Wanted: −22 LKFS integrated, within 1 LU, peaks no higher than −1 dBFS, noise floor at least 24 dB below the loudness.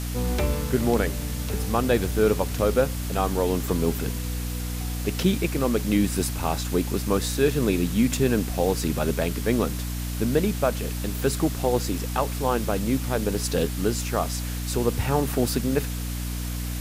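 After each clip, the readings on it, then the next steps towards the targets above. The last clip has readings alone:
mains hum 60 Hz; hum harmonics up to 300 Hz; level of the hum −27 dBFS; background noise floor −30 dBFS; target noise floor −49 dBFS; integrated loudness −25.0 LKFS; sample peak −8.0 dBFS; target loudness −22.0 LKFS
→ hum removal 60 Hz, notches 5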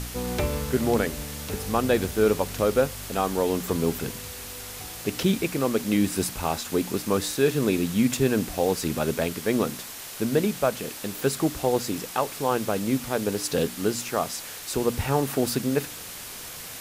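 mains hum none found; background noise floor −39 dBFS; target noise floor −50 dBFS
→ broadband denoise 11 dB, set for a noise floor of −39 dBFS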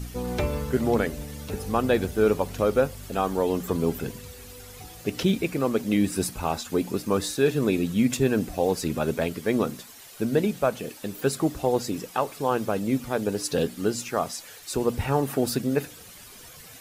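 background noise floor −46 dBFS; target noise floor −50 dBFS
→ broadband denoise 6 dB, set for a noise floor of −46 dBFS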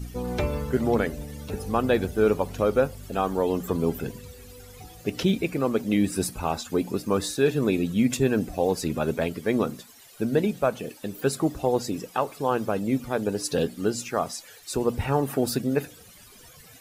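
background noise floor −50 dBFS; integrated loudness −26.0 LKFS; sample peak −9.0 dBFS; target loudness −22.0 LKFS
→ level +4 dB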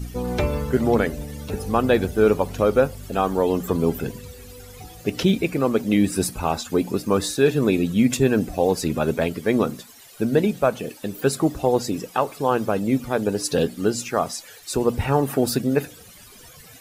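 integrated loudness −22.0 LKFS; sample peak −5.0 dBFS; background noise floor −46 dBFS

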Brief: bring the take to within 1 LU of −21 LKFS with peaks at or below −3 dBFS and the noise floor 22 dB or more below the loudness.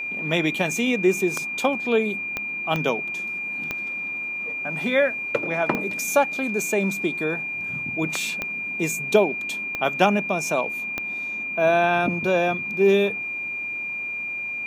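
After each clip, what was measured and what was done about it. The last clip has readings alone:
number of clicks 7; interfering tone 2,400 Hz; level of the tone −27 dBFS; integrated loudness −23.5 LKFS; sample peak −4.0 dBFS; target loudness −21.0 LKFS
→ click removal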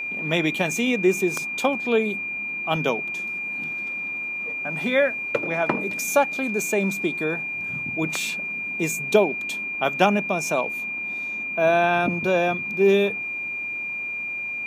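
number of clicks 2; interfering tone 2,400 Hz; level of the tone −27 dBFS
→ notch filter 2,400 Hz, Q 30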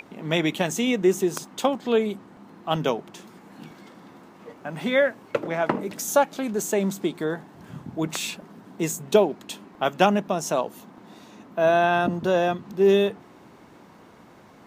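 interfering tone none found; integrated loudness −24.0 LKFS; sample peak −4.5 dBFS; target loudness −21.0 LKFS
→ level +3 dB
brickwall limiter −3 dBFS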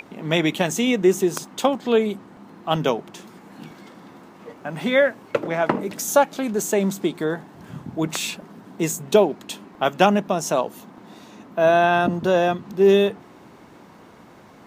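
integrated loudness −21.0 LKFS; sample peak −3.0 dBFS; background noise floor −47 dBFS

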